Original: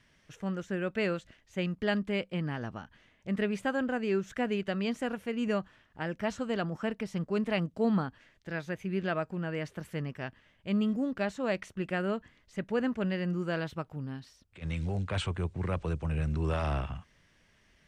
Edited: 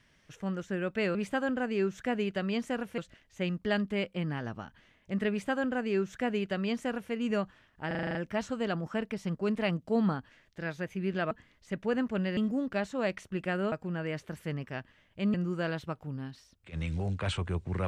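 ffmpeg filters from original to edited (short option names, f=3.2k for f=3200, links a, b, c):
-filter_complex "[0:a]asplit=14[a][b][c][d][e][f][g][h][i][j][k][l][m][n];[a]atrim=end=1.152[o];[b]atrim=start=3.468:end=5.302[p];[c]atrim=start=1.148:end=6.082[q];[d]atrim=start=6.038:end=6.082[r];[e]atrim=start=6.038:end=6.082[s];[f]atrim=start=6.038:end=6.082[t];[g]atrim=start=6.038:end=6.082[u];[h]atrim=start=6.038:end=6.082[v];[i]atrim=start=6.038:end=6.082[w];[j]atrim=start=6.038:end=9.202[x];[k]atrim=start=12.168:end=13.232[y];[l]atrim=start=10.818:end=12.172[z];[m]atrim=start=9.198:end=10.822[aa];[n]atrim=start=13.228[ab];[o][p]acrossfade=d=0.004:c1=hsin:c2=hsin[ac];[ac][q]acrossfade=d=0.004:c1=hsin:c2=hsin[ad];[ad][r]acrossfade=d=0.004:c1=hsin:c2=hsin[ae];[ae][s]acrossfade=d=0.004:c1=hsin:c2=hsin[af];[af][t]acrossfade=d=0.004:c1=hsin:c2=hsin[ag];[ag][u]acrossfade=d=0.004:c1=hsin:c2=hsin[ah];[ah][v]acrossfade=d=0.004:c1=hsin:c2=hsin[ai];[ai][w]acrossfade=d=0.004:c1=hsin:c2=hsin[aj];[aj][x]acrossfade=d=0.004:c1=hsin:c2=hsin[ak];[ak][y]acrossfade=d=0.004:c1=hsin:c2=hsin[al];[al][z]acrossfade=d=0.004:c1=hsin:c2=hsin[am];[am][aa]acrossfade=d=0.004:c1=hsin:c2=hsin[an];[an][ab]acrossfade=d=0.004:c1=hsin:c2=hsin"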